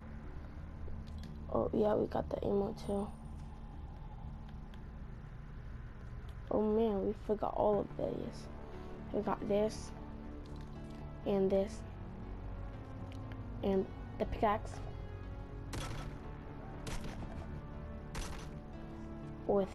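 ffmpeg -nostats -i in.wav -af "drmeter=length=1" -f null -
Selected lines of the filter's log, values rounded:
Channel 1: DR: 12.4
Overall DR: 12.4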